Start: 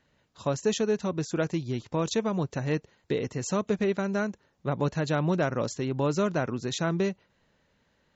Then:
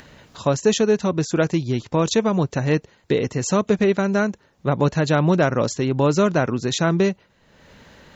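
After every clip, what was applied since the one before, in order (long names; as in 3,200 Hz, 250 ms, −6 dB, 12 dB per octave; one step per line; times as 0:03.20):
upward compression, threshold −43 dBFS
level +8.5 dB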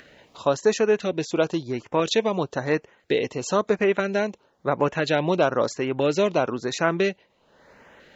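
bass and treble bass −13 dB, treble −9 dB
auto-filter notch saw up 1 Hz 880–5,000 Hz
dynamic equaliser 3,200 Hz, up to +6 dB, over −44 dBFS, Q 0.92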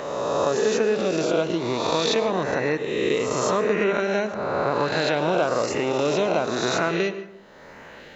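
peak hold with a rise ahead of every peak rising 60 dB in 1.27 s
downward compressor 2 to 1, threshold −31 dBFS, peak gain reduction 10 dB
convolution reverb RT60 0.85 s, pre-delay 98 ms, DRR 12 dB
level +5 dB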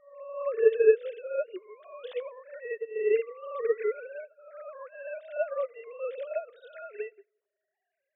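three sine waves on the formant tracks
tape delay 88 ms, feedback 83%, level −22 dB, low-pass 1,600 Hz
expander for the loud parts 2.5 to 1, over −38 dBFS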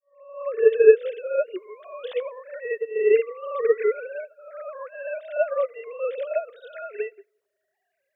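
fade in at the beginning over 0.89 s
level +7 dB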